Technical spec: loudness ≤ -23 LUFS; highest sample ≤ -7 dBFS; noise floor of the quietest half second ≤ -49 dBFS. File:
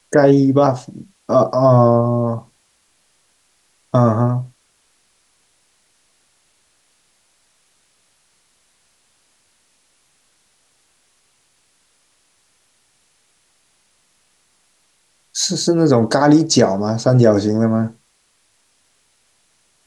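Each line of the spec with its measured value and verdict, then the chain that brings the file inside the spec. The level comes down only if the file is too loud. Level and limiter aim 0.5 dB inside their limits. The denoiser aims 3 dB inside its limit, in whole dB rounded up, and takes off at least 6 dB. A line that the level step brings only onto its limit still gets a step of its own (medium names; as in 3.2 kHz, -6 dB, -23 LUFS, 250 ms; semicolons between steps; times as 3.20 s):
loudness -15.5 LUFS: fail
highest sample -1.5 dBFS: fail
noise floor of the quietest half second -61 dBFS: pass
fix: trim -8 dB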